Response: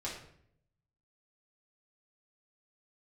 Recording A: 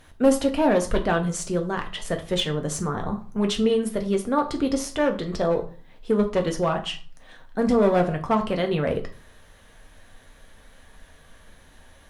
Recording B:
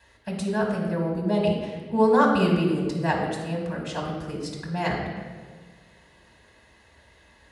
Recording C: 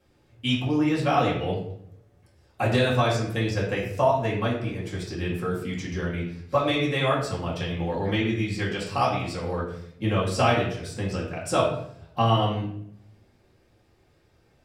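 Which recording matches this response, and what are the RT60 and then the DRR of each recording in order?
C; 0.40, 1.5, 0.65 seconds; 3.5, −3.0, −6.5 decibels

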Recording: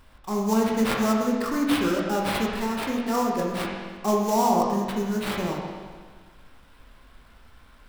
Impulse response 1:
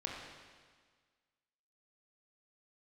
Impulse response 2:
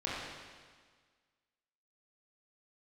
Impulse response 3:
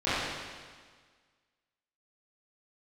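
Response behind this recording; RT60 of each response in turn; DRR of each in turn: 1; 1.6, 1.6, 1.6 seconds; −2.0, −7.5, −15.5 decibels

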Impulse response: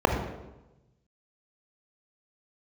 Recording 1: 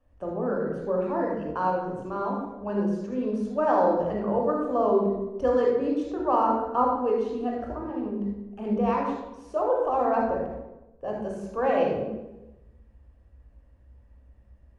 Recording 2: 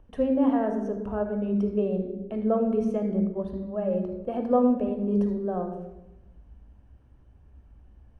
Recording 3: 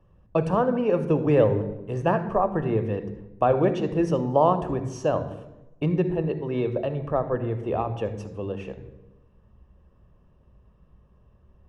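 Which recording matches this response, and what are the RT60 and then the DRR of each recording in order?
2; 1.0, 1.0, 1.0 seconds; −2.0, 4.5, 9.5 decibels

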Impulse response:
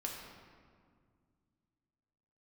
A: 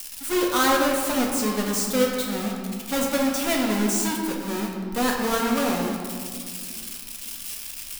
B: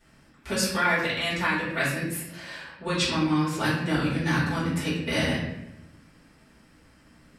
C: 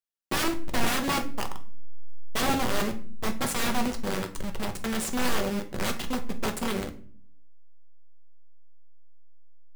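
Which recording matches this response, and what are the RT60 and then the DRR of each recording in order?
A; 2.0 s, 0.90 s, non-exponential decay; −1.5, −11.0, 6.0 decibels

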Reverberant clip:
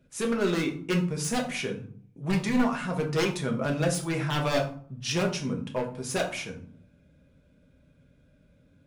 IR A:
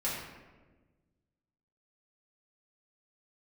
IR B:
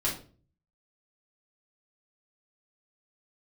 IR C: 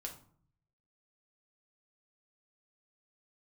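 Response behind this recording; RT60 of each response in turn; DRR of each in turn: C; 1.3, 0.40, 0.55 seconds; −9.0, −7.0, 1.0 decibels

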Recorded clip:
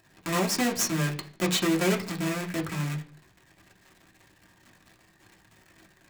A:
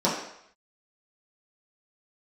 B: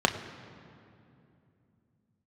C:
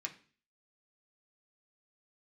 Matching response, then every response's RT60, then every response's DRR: C; 0.70, 2.7, 0.40 seconds; −8.5, 4.0, 0.0 decibels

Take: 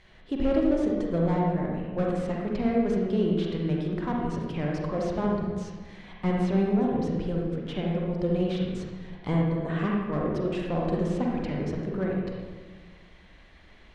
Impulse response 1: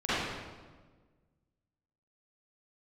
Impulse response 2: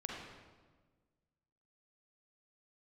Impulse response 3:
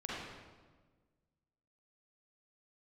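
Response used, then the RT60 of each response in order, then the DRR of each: 2; 1.4, 1.4, 1.4 seconds; −15.0, −2.0, −7.0 decibels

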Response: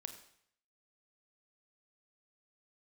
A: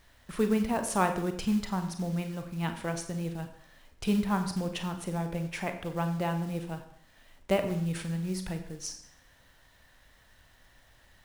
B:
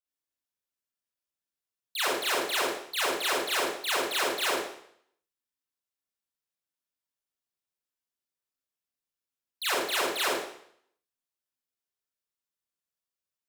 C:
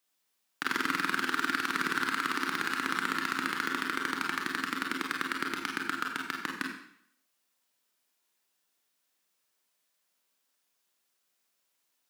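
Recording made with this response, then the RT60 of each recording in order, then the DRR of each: A; 0.65, 0.65, 0.65 seconds; 6.5, −8.0, 0.0 decibels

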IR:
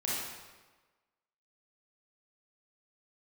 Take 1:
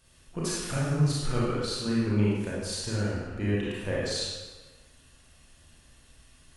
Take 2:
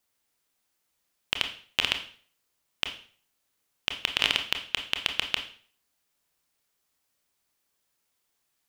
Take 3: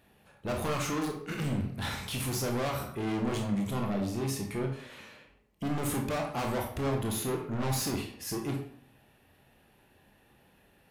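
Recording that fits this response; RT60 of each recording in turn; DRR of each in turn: 1; 1.3, 0.45, 0.60 seconds; −7.0, 5.0, 1.0 decibels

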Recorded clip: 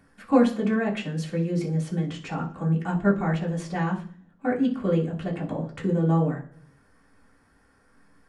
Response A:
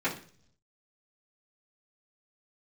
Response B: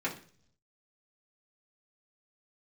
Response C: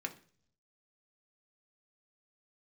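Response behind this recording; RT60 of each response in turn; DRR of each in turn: B; 0.50, 0.50, 0.50 seconds; −11.0, −6.5, 3.0 decibels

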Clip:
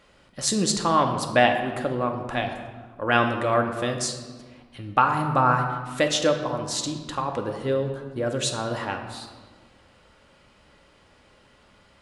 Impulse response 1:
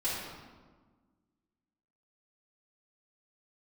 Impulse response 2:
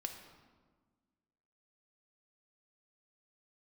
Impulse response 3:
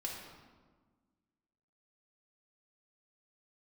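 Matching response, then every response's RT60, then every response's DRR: 2; 1.4, 1.5, 1.4 seconds; −12.0, 3.5, −3.0 decibels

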